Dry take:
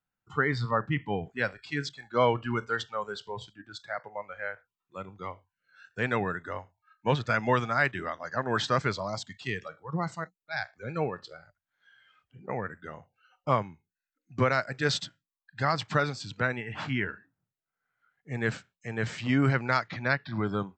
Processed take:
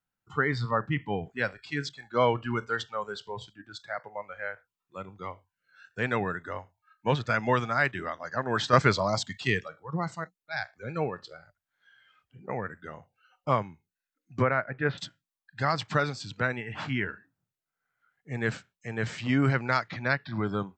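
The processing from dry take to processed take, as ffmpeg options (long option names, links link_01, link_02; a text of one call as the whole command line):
ffmpeg -i in.wav -filter_complex "[0:a]asettb=1/sr,asplit=3[link_01][link_02][link_03];[link_01]atrim=end=14.424[link_04];[link_02]atrim=start=14.42:end=14.98,asetpts=PTS-STARTPTS,afade=type=in:duration=0.004:curve=qsin,afade=type=out:start_time=0.556:duration=0.004:curve=qsin,lowpass=frequency=2300:width=0.5412,lowpass=frequency=2300:width=1.3066[link_05];[link_03]atrim=start=14.976[link_06];[link_04][link_05]acrossfade=duration=0.004:curve1=hsin:curve2=qsin[link_07];[link_07][link_06]acrossfade=duration=0.004:curve1=qsin:curve2=hsin,asplit=3[link_08][link_09][link_10];[link_08]atrim=end=8.732[link_11];[link_09]atrim=start=8.728:end=9.612,asetpts=PTS-STARTPTS,volume=6.5dB[link_12];[link_10]atrim=start=9.608[link_13];[link_11][link_12]acrossfade=duration=0.004:curve1=hsin:curve2=hsin[link_14];[link_14][link_13]acrossfade=duration=0.004:curve1=hsin:curve2=hsin" out.wav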